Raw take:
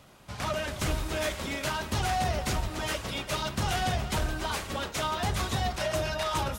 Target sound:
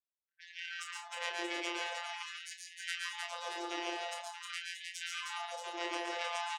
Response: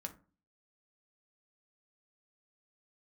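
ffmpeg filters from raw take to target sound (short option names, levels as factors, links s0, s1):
-filter_complex "[0:a]afwtdn=0.0224,asplit=2[s0][s1];[s1]asetrate=35002,aresample=44100,atempo=1.25992,volume=0.447[s2];[s0][s2]amix=inputs=2:normalize=0,afftfilt=real='re*gte(hypot(re,im),0.00355)':imag='im*gte(hypot(re,im),0.00355)':win_size=1024:overlap=0.75,equalizer=f=970:w=0.43:g=-14,alimiter=level_in=1.58:limit=0.0631:level=0:latency=1:release=266,volume=0.631,asoftclip=type=tanh:threshold=0.0237,afftfilt=real='hypot(re,im)*cos(PI*b)':imag='0':win_size=1024:overlap=0.75,aeval=exprs='0.0422*(cos(1*acos(clip(val(0)/0.0422,-1,1)))-cos(1*PI/2))+0.0168*(cos(2*acos(clip(val(0)/0.0422,-1,1)))-cos(2*PI/2))+0.00075*(cos(7*acos(clip(val(0)/0.0422,-1,1)))-cos(7*PI/2))':c=same,aemphasis=mode=production:type=50kf,asplit=2[s3][s4];[s4]adelay=28,volume=0.447[s5];[s3][s5]amix=inputs=2:normalize=0,aecho=1:1:117|139|168|195|310|629:0.531|0.668|0.188|0.106|0.668|0.422,afftfilt=real='re*gte(b*sr/1024,300*pow(1600/300,0.5+0.5*sin(2*PI*0.46*pts/sr)))':imag='im*gte(b*sr/1024,300*pow(1600/300,0.5+0.5*sin(2*PI*0.46*pts/sr)))':win_size=1024:overlap=0.75,volume=2"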